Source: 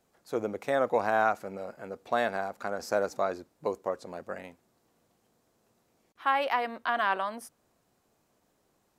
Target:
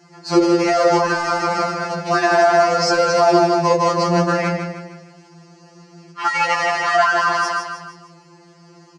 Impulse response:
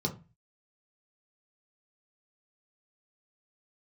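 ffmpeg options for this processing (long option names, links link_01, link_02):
-filter_complex "[0:a]asettb=1/sr,asplit=3[link_01][link_02][link_03];[link_01]atrim=end=1.464[link_04];[link_02]atrim=start=1.46:end=2.08,asetpts=PTS-STARTPTS,afade=type=in:duration=0.004:curve=qsin,afade=type=out:start_time=0.616:duration=0.004:curve=qsin,equalizer=frequency=500:width_type=o:width=0.53:gain=-8[link_05];[link_03]atrim=start=2.076[link_06];[link_04][link_05]acrossfade=duration=0.004:curve1=hsin:curve2=qsin[link_07];[link_07][link_06]acrossfade=duration=0.004:curve1=qsin:curve2=hsin,acrusher=bits=3:mode=log:mix=0:aa=0.000001,highpass=120,equalizer=frequency=260:width_type=q:width=4:gain=-10,equalizer=frequency=610:width_type=q:width=4:gain=7,equalizer=frequency=930:width_type=q:width=4:gain=5,equalizer=frequency=2000:width_type=q:width=4:gain=8,equalizer=frequency=4400:width_type=q:width=4:gain=5,lowpass=frequency=6600:width=0.5412,lowpass=frequency=6600:width=1.3066,aecho=1:1:155|310|465|620|775:0.447|0.197|0.0865|0.0381|0.0167,asplit=2[link_08][link_09];[1:a]atrim=start_sample=2205,asetrate=40572,aresample=44100[link_10];[link_09][link_10]afir=irnorm=-1:irlink=0,volume=-7.5dB[link_11];[link_08][link_11]amix=inputs=2:normalize=0,alimiter=level_in=25.5dB:limit=-1dB:release=50:level=0:latency=1,afftfilt=real='re*2.83*eq(mod(b,8),0)':imag='im*2.83*eq(mod(b,8),0)':win_size=2048:overlap=0.75,volume=-2dB"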